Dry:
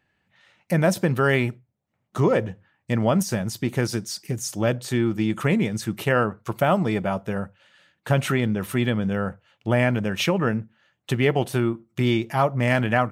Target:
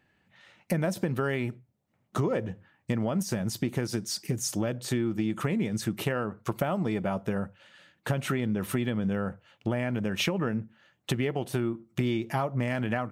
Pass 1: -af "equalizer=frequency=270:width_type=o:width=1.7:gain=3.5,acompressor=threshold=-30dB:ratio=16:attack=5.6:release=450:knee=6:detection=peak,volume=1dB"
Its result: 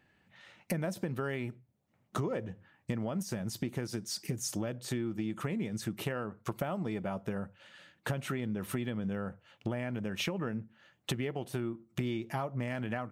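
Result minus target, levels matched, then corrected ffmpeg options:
downward compressor: peak gain reduction +6.5 dB
-af "equalizer=frequency=270:width_type=o:width=1.7:gain=3.5,acompressor=threshold=-23dB:ratio=16:attack=5.6:release=450:knee=6:detection=peak,volume=1dB"

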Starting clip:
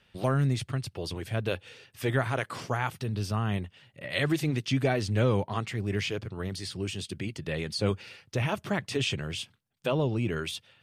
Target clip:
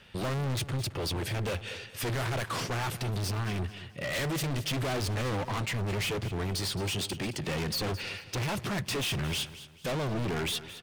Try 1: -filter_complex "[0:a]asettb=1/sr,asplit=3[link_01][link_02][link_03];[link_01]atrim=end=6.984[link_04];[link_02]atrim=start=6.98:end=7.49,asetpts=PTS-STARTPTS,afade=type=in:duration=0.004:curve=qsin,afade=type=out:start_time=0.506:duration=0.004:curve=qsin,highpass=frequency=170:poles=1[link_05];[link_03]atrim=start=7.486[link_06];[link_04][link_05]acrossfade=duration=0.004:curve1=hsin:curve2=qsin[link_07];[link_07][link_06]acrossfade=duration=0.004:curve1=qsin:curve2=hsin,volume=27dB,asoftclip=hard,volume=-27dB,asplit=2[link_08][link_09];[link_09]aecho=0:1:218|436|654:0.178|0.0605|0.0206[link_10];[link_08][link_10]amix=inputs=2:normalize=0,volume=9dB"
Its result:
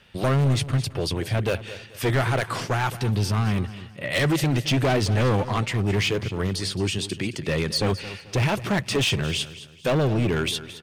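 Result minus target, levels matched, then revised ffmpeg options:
gain into a clipping stage and back: distortion −6 dB
-filter_complex "[0:a]asettb=1/sr,asplit=3[link_01][link_02][link_03];[link_01]atrim=end=6.984[link_04];[link_02]atrim=start=6.98:end=7.49,asetpts=PTS-STARTPTS,afade=type=in:duration=0.004:curve=qsin,afade=type=out:start_time=0.506:duration=0.004:curve=qsin,highpass=frequency=170:poles=1[link_05];[link_03]atrim=start=7.486[link_06];[link_04][link_05]acrossfade=duration=0.004:curve1=hsin:curve2=qsin[link_07];[link_07][link_06]acrossfade=duration=0.004:curve1=qsin:curve2=hsin,volume=39dB,asoftclip=hard,volume=-39dB,asplit=2[link_08][link_09];[link_09]aecho=0:1:218|436|654:0.178|0.0605|0.0206[link_10];[link_08][link_10]amix=inputs=2:normalize=0,volume=9dB"

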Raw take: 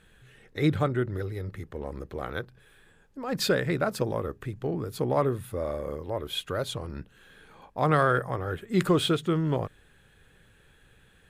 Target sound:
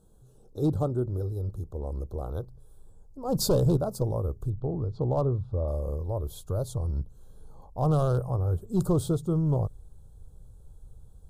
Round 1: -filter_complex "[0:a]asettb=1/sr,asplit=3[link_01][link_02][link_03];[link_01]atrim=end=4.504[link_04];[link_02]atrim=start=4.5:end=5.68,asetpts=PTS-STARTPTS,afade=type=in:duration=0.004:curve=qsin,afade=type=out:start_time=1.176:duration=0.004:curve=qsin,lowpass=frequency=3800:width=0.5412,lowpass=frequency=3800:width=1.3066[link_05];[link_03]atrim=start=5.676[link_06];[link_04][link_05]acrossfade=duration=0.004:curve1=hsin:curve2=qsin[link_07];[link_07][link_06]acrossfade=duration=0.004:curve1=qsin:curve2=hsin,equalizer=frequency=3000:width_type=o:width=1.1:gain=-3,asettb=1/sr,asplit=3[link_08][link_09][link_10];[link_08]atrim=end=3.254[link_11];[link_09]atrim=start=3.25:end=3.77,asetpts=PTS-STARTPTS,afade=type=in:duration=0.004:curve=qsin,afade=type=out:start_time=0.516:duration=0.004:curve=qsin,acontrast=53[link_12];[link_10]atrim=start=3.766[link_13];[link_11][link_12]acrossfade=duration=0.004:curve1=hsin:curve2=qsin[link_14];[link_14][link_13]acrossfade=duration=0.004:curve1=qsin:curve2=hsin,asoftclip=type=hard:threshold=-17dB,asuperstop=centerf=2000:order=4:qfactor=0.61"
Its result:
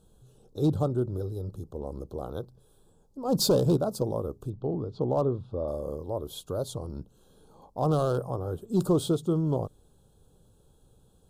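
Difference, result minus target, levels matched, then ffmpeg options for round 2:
4,000 Hz band +5.0 dB; 125 Hz band −3.5 dB
-filter_complex "[0:a]asettb=1/sr,asplit=3[link_01][link_02][link_03];[link_01]atrim=end=4.504[link_04];[link_02]atrim=start=4.5:end=5.68,asetpts=PTS-STARTPTS,afade=type=in:duration=0.004:curve=qsin,afade=type=out:start_time=1.176:duration=0.004:curve=qsin,lowpass=frequency=3800:width=0.5412,lowpass=frequency=3800:width=1.3066[link_05];[link_03]atrim=start=5.676[link_06];[link_04][link_05]acrossfade=duration=0.004:curve1=hsin:curve2=qsin[link_07];[link_07][link_06]acrossfade=duration=0.004:curve1=qsin:curve2=hsin,equalizer=frequency=3000:width_type=o:width=1.1:gain=-12.5,asettb=1/sr,asplit=3[link_08][link_09][link_10];[link_08]atrim=end=3.254[link_11];[link_09]atrim=start=3.25:end=3.77,asetpts=PTS-STARTPTS,afade=type=in:duration=0.004:curve=qsin,afade=type=out:start_time=0.516:duration=0.004:curve=qsin,acontrast=53[link_12];[link_10]atrim=start=3.766[link_13];[link_11][link_12]acrossfade=duration=0.004:curve1=hsin:curve2=qsin[link_14];[link_14][link_13]acrossfade=duration=0.004:curve1=qsin:curve2=hsin,asoftclip=type=hard:threshold=-17dB,asuperstop=centerf=2000:order=4:qfactor=0.61,asubboost=boost=7:cutoff=91"

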